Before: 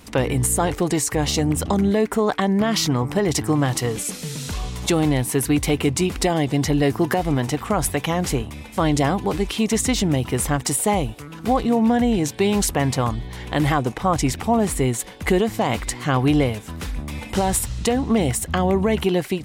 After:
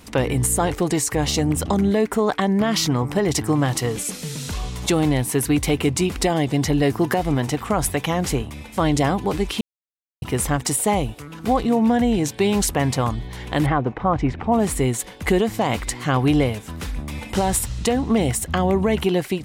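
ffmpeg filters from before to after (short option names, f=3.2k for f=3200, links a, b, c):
-filter_complex "[0:a]asettb=1/sr,asplit=3[a][b][c];[a]atrim=end=13.664[d];[b]atrim=start=13.66:end=14.52,asetpts=PTS-STARTPTS,afade=t=in:d=0.004:c=qsin,afade=t=out:st=0.856:d=0.004:c=qsin,lowpass=1.9k[e];[c]atrim=start=14.516[f];[d][e]acrossfade=d=0.004:c1=hsin:c2=qsin[g];[g][f]acrossfade=d=0.004:c1=qsin:c2=hsin,asplit=3[h][i][j];[h]atrim=end=9.61,asetpts=PTS-STARTPTS,afade=t=out:st=9.606:d=0.004:c=hsin[k];[i]atrim=start=9.61:end=10.22,asetpts=PTS-STARTPTS,volume=0[l];[j]atrim=start=10.22,asetpts=PTS-STARTPTS,afade=t=in:d=0.004:c=hsin[m];[k][l][m]concat=n=3:v=0:a=1"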